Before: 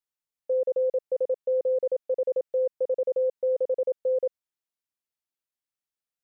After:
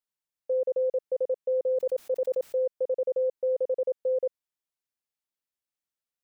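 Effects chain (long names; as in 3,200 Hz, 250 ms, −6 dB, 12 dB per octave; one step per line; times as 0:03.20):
0:01.71–0:02.59: level that may fall only so fast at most 33 dB per second
level −1.5 dB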